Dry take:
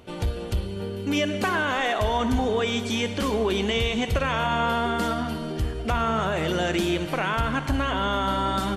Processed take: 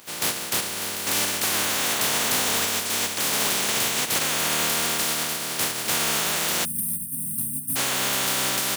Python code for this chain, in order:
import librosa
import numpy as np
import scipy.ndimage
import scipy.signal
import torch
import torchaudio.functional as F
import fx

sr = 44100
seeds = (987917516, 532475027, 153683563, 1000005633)

y = fx.spec_flatten(x, sr, power=0.14)
y = scipy.signal.sosfilt(scipy.signal.butter(4, 100.0, 'highpass', fs=sr, output='sos'), y)
y = fx.spec_erase(y, sr, start_s=6.65, length_s=1.11, low_hz=280.0, high_hz=8400.0)
y = 10.0 ** (-18.5 / 20.0) * np.tanh(y / 10.0 ** (-18.5 / 20.0))
y = fx.dmg_crackle(y, sr, seeds[0], per_s=560.0, level_db=-56.0)
y = F.gain(torch.from_numpy(y), 2.5).numpy()